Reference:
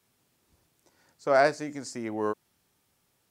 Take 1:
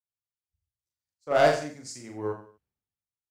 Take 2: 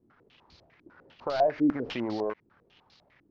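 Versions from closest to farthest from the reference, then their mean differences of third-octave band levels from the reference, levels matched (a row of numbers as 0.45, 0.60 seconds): 1, 2; 6.0, 8.0 decibels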